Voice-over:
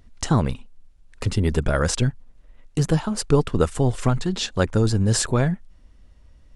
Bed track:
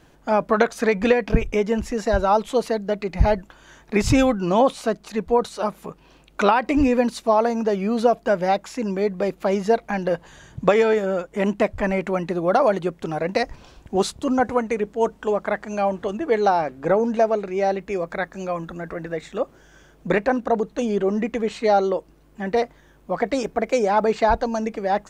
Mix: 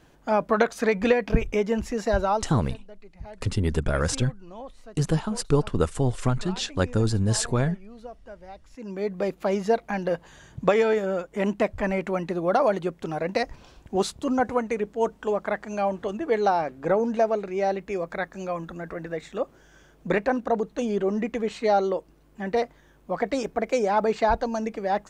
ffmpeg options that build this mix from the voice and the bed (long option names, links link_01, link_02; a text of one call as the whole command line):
ffmpeg -i stem1.wav -i stem2.wav -filter_complex "[0:a]adelay=2200,volume=-3.5dB[link_01];[1:a]volume=17dB,afade=type=out:start_time=2.2:duration=0.39:silence=0.0944061,afade=type=in:start_time=8.7:duration=0.49:silence=0.1[link_02];[link_01][link_02]amix=inputs=2:normalize=0" out.wav